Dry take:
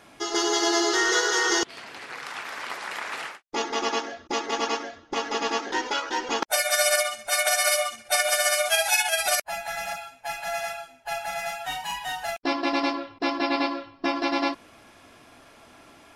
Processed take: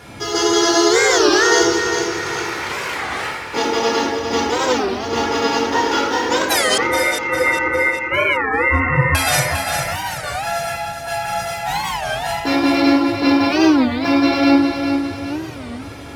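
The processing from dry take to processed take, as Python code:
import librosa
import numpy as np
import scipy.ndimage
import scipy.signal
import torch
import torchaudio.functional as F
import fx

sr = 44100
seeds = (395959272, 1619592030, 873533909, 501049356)

y = fx.law_mismatch(x, sr, coded='mu')
y = fx.low_shelf(y, sr, hz=200.0, db=9.0)
y = fx.room_shoebox(y, sr, seeds[0], volume_m3=380.0, walls='mixed', distance_m=1.8)
y = fx.freq_invert(y, sr, carrier_hz=2700, at=(6.78, 9.15))
y = scipy.signal.sosfilt(scipy.signal.butter(2, 63.0, 'highpass', fs=sr, output='sos'), y)
y = fx.peak_eq(y, sr, hz=95.0, db=9.0, octaves=0.95)
y = y + 0.33 * np.pad(y, (int(2.2 * sr / 1000.0), 0))[:len(y)]
y = fx.echo_feedback(y, sr, ms=403, feedback_pct=47, wet_db=-7)
y = fx.record_warp(y, sr, rpm=33.33, depth_cents=250.0)
y = y * 10.0 ** (1.5 / 20.0)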